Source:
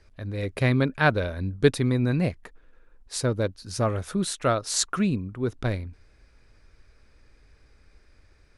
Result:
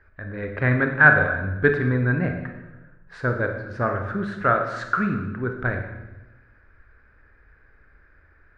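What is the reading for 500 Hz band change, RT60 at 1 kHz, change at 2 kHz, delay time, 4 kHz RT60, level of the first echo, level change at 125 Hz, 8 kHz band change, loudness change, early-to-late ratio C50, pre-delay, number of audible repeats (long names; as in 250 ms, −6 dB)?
+1.0 dB, 0.95 s, +12.0 dB, no echo audible, 0.90 s, no echo audible, +1.0 dB, below −25 dB, +3.5 dB, 6.5 dB, 26 ms, no echo audible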